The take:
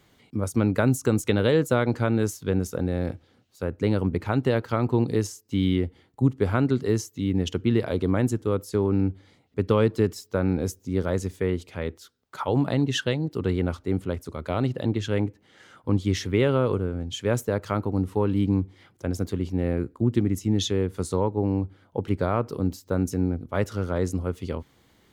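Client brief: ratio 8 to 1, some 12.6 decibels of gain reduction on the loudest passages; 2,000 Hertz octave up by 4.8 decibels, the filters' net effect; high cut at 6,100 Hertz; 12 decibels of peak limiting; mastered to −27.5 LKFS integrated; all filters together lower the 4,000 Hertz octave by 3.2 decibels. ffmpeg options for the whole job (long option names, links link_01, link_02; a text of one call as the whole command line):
ffmpeg -i in.wav -af "lowpass=6100,equalizer=frequency=2000:width_type=o:gain=8,equalizer=frequency=4000:width_type=o:gain=-7.5,acompressor=threshold=-29dB:ratio=8,volume=11dB,alimiter=limit=-15.5dB:level=0:latency=1" out.wav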